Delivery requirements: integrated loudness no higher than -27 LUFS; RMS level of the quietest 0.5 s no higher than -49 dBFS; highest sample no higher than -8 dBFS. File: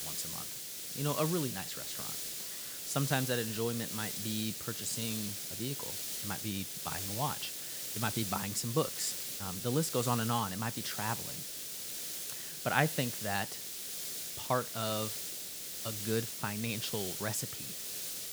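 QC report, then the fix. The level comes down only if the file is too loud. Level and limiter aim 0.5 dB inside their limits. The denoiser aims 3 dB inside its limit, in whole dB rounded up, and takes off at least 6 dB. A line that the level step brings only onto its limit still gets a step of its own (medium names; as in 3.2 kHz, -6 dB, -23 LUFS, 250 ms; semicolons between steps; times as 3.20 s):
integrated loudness -35.0 LUFS: pass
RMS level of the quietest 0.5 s -43 dBFS: fail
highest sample -9.5 dBFS: pass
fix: noise reduction 9 dB, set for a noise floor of -43 dBFS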